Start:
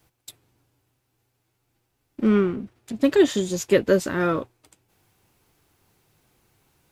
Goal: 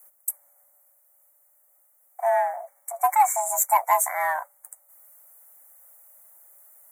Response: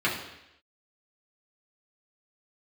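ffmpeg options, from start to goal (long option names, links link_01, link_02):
-filter_complex "[0:a]highpass=frequency=150:poles=1,afreqshift=460,acrossover=split=2000[link_01][link_02];[link_02]aexciter=amount=8.6:drive=6.5:freq=7900[link_03];[link_01][link_03]amix=inputs=2:normalize=0,afftfilt=real='re*(1-between(b*sr/4096,2300,5700))':imag='im*(1-between(b*sr/4096,2300,5700))':win_size=4096:overlap=0.75,aeval=exprs='0.596*(cos(1*acos(clip(val(0)/0.596,-1,1)))-cos(1*PI/2))+0.0119*(cos(3*acos(clip(val(0)/0.596,-1,1)))-cos(3*PI/2))+0.0075*(cos(7*acos(clip(val(0)/0.596,-1,1)))-cos(7*PI/2))':channel_layout=same,volume=-1dB"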